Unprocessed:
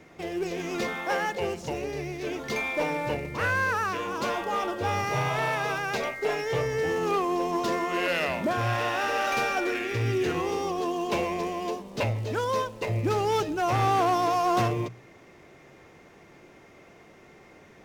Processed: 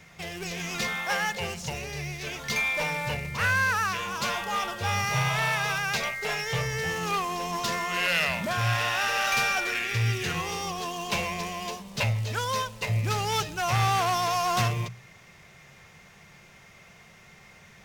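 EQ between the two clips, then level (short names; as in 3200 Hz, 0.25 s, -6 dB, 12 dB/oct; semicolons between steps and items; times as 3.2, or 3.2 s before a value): passive tone stack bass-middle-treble 10-0-10; bell 190 Hz +13.5 dB 1.6 oct; +8.0 dB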